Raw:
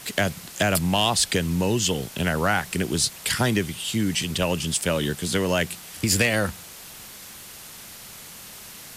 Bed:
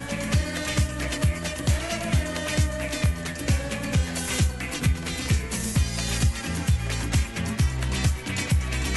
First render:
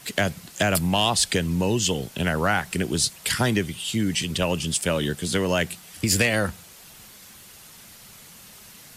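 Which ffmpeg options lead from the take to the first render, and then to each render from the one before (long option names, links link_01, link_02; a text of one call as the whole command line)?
ffmpeg -i in.wav -af "afftdn=noise_reduction=6:noise_floor=-42" out.wav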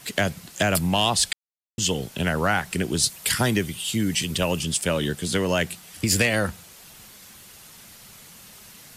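ffmpeg -i in.wav -filter_complex "[0:a]asettb=1/sr,asplit=3[link_01][link_02][link_03];[link_01]atrim=end=3.034[link_04];[link_02]atrim=start=3.03:end=4.64,asetpts=PTS-STARTPTS,afade=type=in:duration=0.004:curve=qsin,afade=type=out:start_time=1.606:duration=0.004:curve=qsin,highshelf=frequency=11000:gain=8.5[link_05];[link_03]atrim=start=4.636[link_06];[link_04][link_05]acrossfade=duration=0.004:curve1=hsin:curve2=qsin[link_07];[link_07][link_06]acrossfade=duration=0.004:curve1=qsin:curve2=hsin,asplit=3[link_08][link_09][link_10];[link_08]atrim=end=1.33,asetpts=PTS-STARTPTS,afade=type=out:start_time=1.326:duration=0.004:curve=hsin[link_11];[link_09]atrim=start=1.33:end=1.78,asetpts=PTS-STARTPTS,volume=0[link_12];[link_10]atrim=start=1.78,asetpts=PTS-STARTPTS,afade=type=in:duration=0.004:curve=hsin[link_13];[link_11][link_12][link_13]concat=n=3:v=0:a=1" out.wav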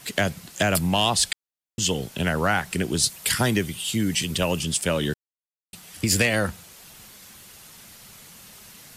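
ffmpeg -i in.wav -filter_complex "[0:a]asplit=3[link_01][link_02][link_03];[link_01]atrim=end=5.14,asetpts=PTS-STARTPTS,afade=type=out:start_time=5.136:duration=0.004:curve=hsin[link_04];[link_02]atrim=start=5.14:end=5.73,asetpts=PTS-STARTPTS,volume=0[link_05];[link_03]atrim=start=5.73,asetpts=PTS-STARTPTS,afade=type=in:duration=0.004:curve=hsin[link_06];[link_04][link_05][link_06]concat=n=3:v=0:a=1" out.wav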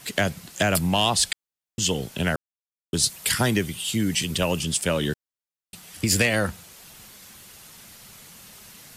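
ffmpeg -i in.wav -filter_complex "[0:a]asplit=3[link_01][link_02][link_03];[link_01]atrim=end=2.36,asetpts=PTS-STARTPTS,afade=type=out:start_time=2.356:duration=0.004:curve=hsin[link_04];[link_02]atrim=start=2.36:end=2.93,asetpts=PTS-STARTPTS,volume=0[link_05];[link_03]atrim=start=2.93,asetpts=PTS-STARTPTS,afade=type=in:duration=0.004:curve=hsin[link_06];[link_04][link_05][link_06]concat=n=3:v=0:a=1" out.wav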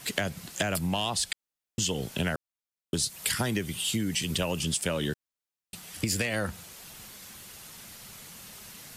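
ffmpeg -i in.wav -af "acompressor=threshold=-25dB:ratio=10" out.wav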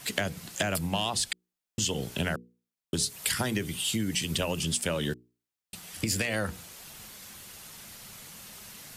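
ffmpeg -i in.wav -af "bandreject=frequency=60:width_type=h:width=6,bandreject=frequency=120:width_type=h:width=6,bandreject=frequency=180:width_type=h:width=6,bandreject=frequency=240:width_type=h:width=6,bandreject=frequency=300:width_type=h:width=6,bandreject=frequency=360:width_type=h:width=6,bandreject=frequency=420:width_type=h:width=6,bandreject=frequency=480:width_type=h:width=6" out.wav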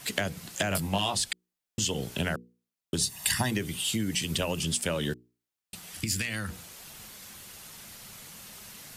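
ffmpeg -i in.wav -filter_complex "[0:a]asettb=1/sr,asplit=3[link_01][link_02][link_03];[link_01]atrim=end=0.694[link_04];[link_02]atrim=start=0.69:end=1.18,asetpts=PTS-STARTPTS,afade=type=in:duration=0.004:curve=qsin,afade=type=out:start_time=0.486:duration=0.004:curve=qsin,asplit=2[link_05][link_06];[link_06]adelay=20,volume=-5dB[link_07];[link_05][link_07]amix=inputs=2:normalize=0,atrim=end_sample=21609[link_08];[link_03]atrim=start=1.176[link_09];[link_04][link_08]acrossfade=duration=0.004:curve1=hsin:curve2=qsin[link_10];[link_10][link_09]acrossfade=duration=0.004:curve1=qsin:curve2=hsin,asettb=1/sr,asplit=3[link_11][link_12][link_13];[link_11]atrim=end=3.014[link_14];[link_12]atrim=start=3.01:end=3.51,asetpts=PTS-STARTPTS,afade=type=in:duration=0.004:curve=qsin,afade=type=out:start_time=0.496:duration=0.004:curve=qsin,aecho=1:1:1.1:0.65,atrim=end_sample=22050[link_15];[link_13]atrim=start=3.506[link_16];[link_14][link_15]acrossfade=duration=0.004:curve1=hsin:curve2=qsin[link_17];[link_17][link_16]acrossfade=duration=0.004:curve1=qsin:curve2=hsin,asettb=1/sr,asplit=3[link_18][link_19][link_20];[link_18]atrim=end=6.004[link_21];[link_19]atrim=start=6:end=6.5,asetpts=PTS-STARTPTS,afade=type=in:duration=0.004:curve=qsin,afade=type=out:start_time=0.496:duration=0.004:curve=qsin,equalizer=frequency=590:width=1:gain=-14.5[link_22];[link_20]atrim=start=6.496[link_23];[link_21][link_22]acrossfade=duration=0.004:curve1=hsin:curve2=qsin[link_24];[link_24][link_23]acrossfade=duration=0.004:curve1=qsin:curve2=hsin" out.wav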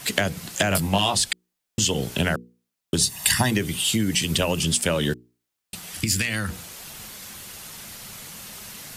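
ffmpeg -i in.wav -af "volume=7dB" out.wav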